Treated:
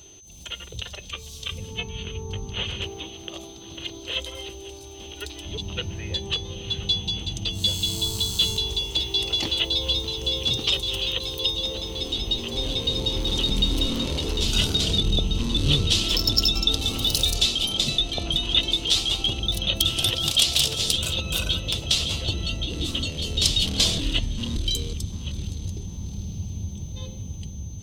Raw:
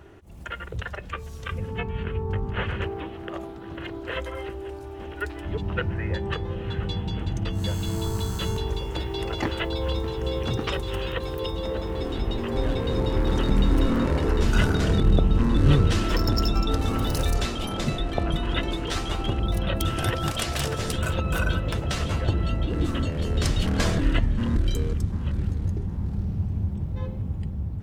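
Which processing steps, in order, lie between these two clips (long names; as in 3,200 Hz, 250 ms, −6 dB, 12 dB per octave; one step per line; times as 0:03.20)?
high shelf with overshoot 2,400 Hz +13 dB, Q 3
steady tone 6,200 Hz −42 dBFS
level −5 dB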